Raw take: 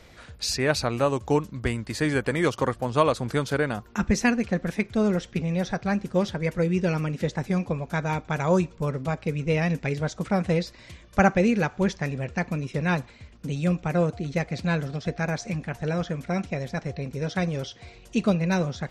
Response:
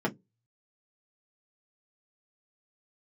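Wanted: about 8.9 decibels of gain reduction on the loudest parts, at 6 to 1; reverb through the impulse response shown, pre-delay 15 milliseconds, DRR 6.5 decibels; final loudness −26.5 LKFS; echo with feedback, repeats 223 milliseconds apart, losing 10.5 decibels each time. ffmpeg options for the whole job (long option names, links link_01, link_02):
-filter_complex "[0:a]acompressor=threshold=-25dB:ratio=6,aecho=1:1:223|446|669:0.299|0.0896|0.0269,asplit=2[link_01][link_02];[1:a]atrim=start_sample=2205,adelay=15[link_03];[link_02][link_03]afir=irnorm=-1:irlink=0,volume=-15.5dB[link_04];[link_01][link_04]amix=inputs=2:normalize=0,volume=1dB"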